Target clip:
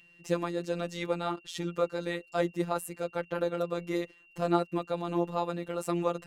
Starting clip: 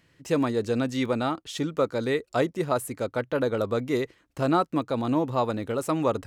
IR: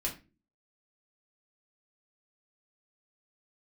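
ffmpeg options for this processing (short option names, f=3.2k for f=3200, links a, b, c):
-af "aeval=exprs='val(0)+0.00501*sin(2*PI*2700*n/s)':c=same,afftfilt=real='hypot(re,im)*cos(PI*b)':imag='0':win_size=1024:overlap=0.75,volume=-1.5dB"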